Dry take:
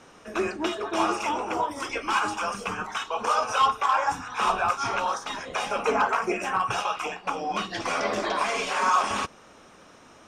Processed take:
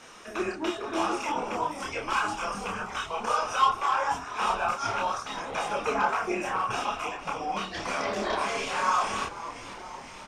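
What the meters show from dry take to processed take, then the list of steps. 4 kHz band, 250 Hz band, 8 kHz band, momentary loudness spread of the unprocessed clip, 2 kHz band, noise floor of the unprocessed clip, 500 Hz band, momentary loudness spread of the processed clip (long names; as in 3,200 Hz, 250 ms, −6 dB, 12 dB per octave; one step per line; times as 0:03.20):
−3.0 dB, −2.0 dB, −2.5 dB, 8 LU, −2.5 dB, −52 dBFS, −2.5 dB, 8 LU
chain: on a send: echo with shifted repeats 488 ms, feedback 63%, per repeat −100 Hz, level −14.5 dB
on the sum: multi-voice chorus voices 6, 1.5 Hz, delay 28 ms, depth 3 ms
one half of a high-frequency compander encoder only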